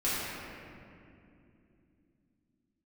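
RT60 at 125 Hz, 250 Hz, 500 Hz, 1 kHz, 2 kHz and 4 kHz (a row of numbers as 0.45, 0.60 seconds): 4.0, 4.6, 3.2, 2.2, 2.2, 1.6 seconds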